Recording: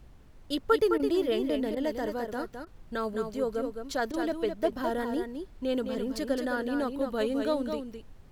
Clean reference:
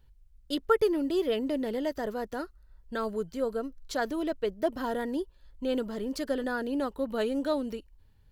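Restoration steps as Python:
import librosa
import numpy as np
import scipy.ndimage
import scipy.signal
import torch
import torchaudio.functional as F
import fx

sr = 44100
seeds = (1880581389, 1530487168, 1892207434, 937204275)

y = fx.fix_interpolate(x, sr, at_s=(0.98, 1.75, 2.65, 4.12), length_ms=15.0)
y = fx.noise_reduce(y, sr, print_start_s=0.0, print_end_s=0.5, reduce_db=7.0)
y = fx.fix_echo_inverse(y, sr, delay_ms=212, level_db=-6.5)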